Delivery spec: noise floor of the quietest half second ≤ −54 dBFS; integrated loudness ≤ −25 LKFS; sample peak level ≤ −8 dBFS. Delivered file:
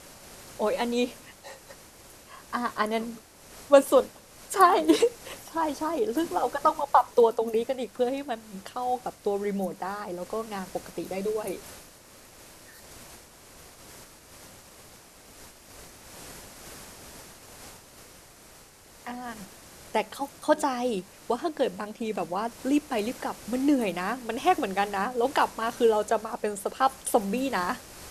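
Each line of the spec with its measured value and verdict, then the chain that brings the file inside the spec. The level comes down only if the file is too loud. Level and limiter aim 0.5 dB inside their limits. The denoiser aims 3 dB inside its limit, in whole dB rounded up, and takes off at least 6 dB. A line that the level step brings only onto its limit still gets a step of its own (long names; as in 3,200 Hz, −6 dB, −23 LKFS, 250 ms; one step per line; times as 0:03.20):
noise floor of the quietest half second −52 dBFS: out of spec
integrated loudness −27.5 LKFS: in spec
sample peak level −4.0 dBFS: out of spec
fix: broadband denoise 6 dB, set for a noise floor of −52 dBFS
brickwall limiter −8.5 dBFS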